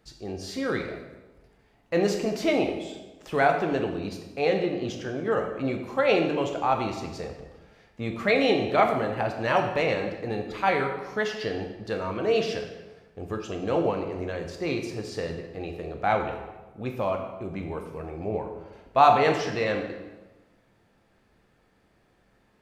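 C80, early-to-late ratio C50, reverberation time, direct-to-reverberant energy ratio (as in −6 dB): 8.0 dB, 6.5 dB, 1.2 s, 3.0 dB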